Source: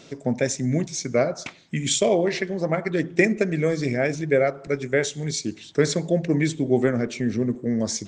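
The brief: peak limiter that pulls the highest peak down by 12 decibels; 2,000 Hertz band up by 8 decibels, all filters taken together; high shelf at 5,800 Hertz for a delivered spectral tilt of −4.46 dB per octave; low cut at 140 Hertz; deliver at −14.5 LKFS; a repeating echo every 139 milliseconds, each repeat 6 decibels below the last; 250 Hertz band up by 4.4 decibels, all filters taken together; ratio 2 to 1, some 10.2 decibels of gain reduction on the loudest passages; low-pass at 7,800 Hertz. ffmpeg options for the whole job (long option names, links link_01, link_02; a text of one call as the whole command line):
ffmpeg -i in.wav -af "highpass=140,lowpass=7800,equalizer=frequency=250:width_type=o:gain=6,equalizer=frequency=2000:width_type=o:gain=8.5,highshelf=frequency=5800:gain=4.5,acompressor=threshold=-27dB:ratio=2,alimiter=limit=-19dB:level=0:latency=1,aecho=1:1:139|278|417|556|695|834:0.501|0.251|0.125|0.0626|0.0313|0.0157,volume=13.5dB" out.wav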